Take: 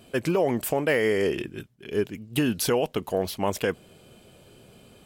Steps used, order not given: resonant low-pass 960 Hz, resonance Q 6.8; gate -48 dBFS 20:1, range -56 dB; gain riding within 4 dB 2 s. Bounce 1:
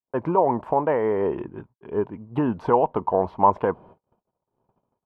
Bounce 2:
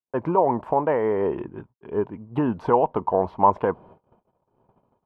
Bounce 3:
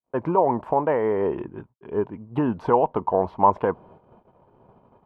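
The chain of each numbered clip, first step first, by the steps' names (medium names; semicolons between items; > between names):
gate > gain riding > resonant low-pass; gain riding > gate > resonant low-pass; gain riding > resonant low-pass > gate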